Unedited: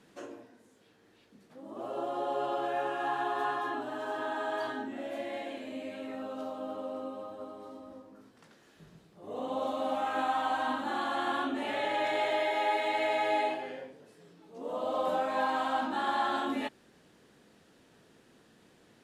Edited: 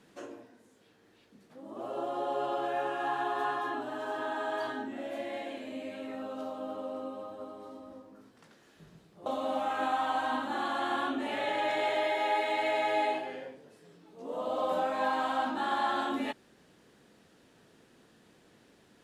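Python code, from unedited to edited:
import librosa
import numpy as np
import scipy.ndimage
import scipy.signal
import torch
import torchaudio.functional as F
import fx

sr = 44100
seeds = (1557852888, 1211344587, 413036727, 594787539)

y = fx.edit(x, sr, fx.cut(start_s=9.26, length_s=0.36), tone=tone)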